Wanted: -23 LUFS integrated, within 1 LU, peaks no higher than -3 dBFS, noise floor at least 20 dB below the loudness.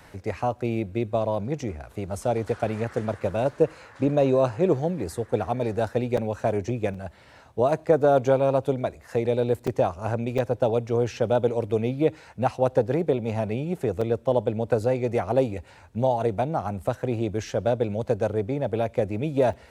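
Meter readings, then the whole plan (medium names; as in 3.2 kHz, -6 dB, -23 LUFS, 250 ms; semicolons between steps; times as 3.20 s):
dropouts 6; longest dropout 4.7 ms; loudness -25.5 LUFS; peak level -7.0 dBFS; loudness target -23.0 LUFS
-> interpolate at 6.17/6.94/9.67/10.38/14.01/19.53 s, 4.7 ms; trim +2.5 dB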